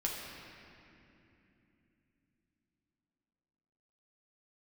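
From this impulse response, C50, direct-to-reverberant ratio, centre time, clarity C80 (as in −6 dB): 0.5 dB, −3.0 dB, 123 ms, 2.0 dB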